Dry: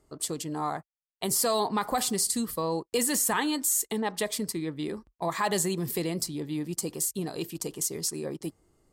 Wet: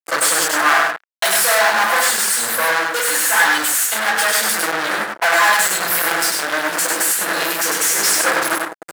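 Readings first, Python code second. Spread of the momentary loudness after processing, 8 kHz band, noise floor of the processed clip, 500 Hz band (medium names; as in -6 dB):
6 LU, +12.5 dB, -41 dBFS, +8.5 dB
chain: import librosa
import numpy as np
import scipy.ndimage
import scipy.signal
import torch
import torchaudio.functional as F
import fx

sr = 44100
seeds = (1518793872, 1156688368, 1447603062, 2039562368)

p1 = fx.octave_divider(x, sr, octaves=1, level_db=-3.0)
p2 = 10.0 ** (-28.0 / 20.0) * np.tanh(p1 / 10.0 ** (-28.0 / 20.0))
p3 = p1 + (p2 * librosa.db_to_amplitude(-4.0))
p4 = fx.high_shelf(p3, sr, hz=4400.0, db=8.0)
p5 = p4 + 0.88 * np.pad(p4, (int(6.0 * sr / 1000.0), 0))[:len(p4)]
p6 = fx.room_shoebox(p5, sr, seeds[0], volume_m3=210.0, walls='furnished', distance_m=5.2)
p7 = fx.transient(p6, sr, attack_db=12, sustain_db=-11)
p8 = fx.fuzz(p7, sr, gain_db=32.0, gate_db=-33.0)
p9 = p8 + fx.echo_single(p8, sr, ms=99, db=-3.5, dry=0)
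p10 = fx.rider(p9, sr, range_db=10, speed_s=2.0)
p11 = scipy.signal.sosfilt(scipy.signal.butter(2, 610.0, 'highpass', fs=sr, output='sos'), p10)
p12 = fx.peak_eq(p11, sr, hz=1600.0, db=12.5, octaves=0.75)
y = p12 * librosa.db_to_amplitude(-3.5)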